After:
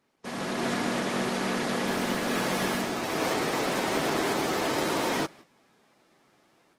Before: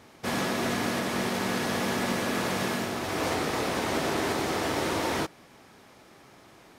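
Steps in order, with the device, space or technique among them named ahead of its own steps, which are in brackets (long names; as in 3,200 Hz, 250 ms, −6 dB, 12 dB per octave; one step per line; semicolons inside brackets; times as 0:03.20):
0:01.27–0:02.21: high-pass filter 130 Hz 24 dB per octave
video call (high-pass filter 130 Hz 24 dB per octave; automatic gain control gain up to 8 dB; noise gate −40 dBFS, range −11 dB; level −7 dB; Opus 16 kbit/s 48,000 Hz)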